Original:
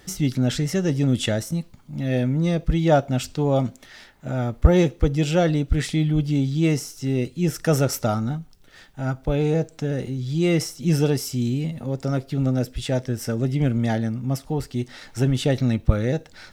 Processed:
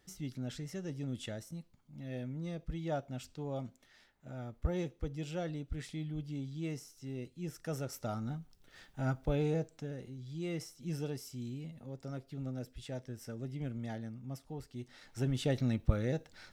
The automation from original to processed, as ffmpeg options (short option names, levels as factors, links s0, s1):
-af "afade=t=in:st=7.91:d=1.09:silence=0.266073,afade=t=out:st=9:d=0.98:silence=0.281838,afade=t=in:st=14.75:d=0.77:silence=0.421697"